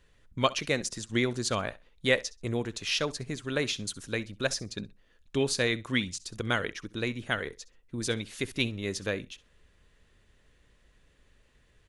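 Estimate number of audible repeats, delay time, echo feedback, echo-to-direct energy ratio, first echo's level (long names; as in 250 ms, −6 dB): 2, 65 ms, 18%, −20.0 dB, −20.0 dB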